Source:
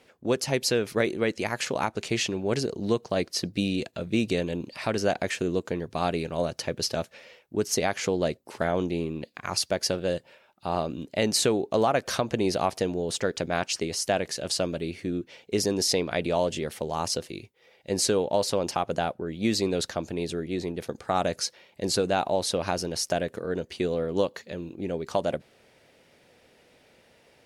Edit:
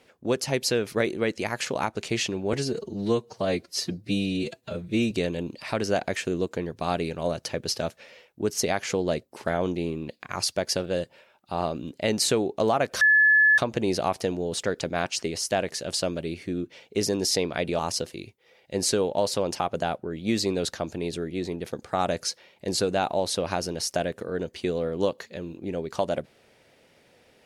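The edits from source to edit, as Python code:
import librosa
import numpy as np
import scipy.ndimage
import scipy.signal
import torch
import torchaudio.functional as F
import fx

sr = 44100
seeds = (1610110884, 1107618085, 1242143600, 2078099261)

y = fx.edit(x, sr, fx.stretch_span(start_s=2.53, length_s=1.72, factor=1.5),
    fx.insert_tone(at_s=12.15, length_s=0.57, hz=1720.0, db=-14.5),
    fx.cut(start_s=16.36, length_s=0.59), tone=tone)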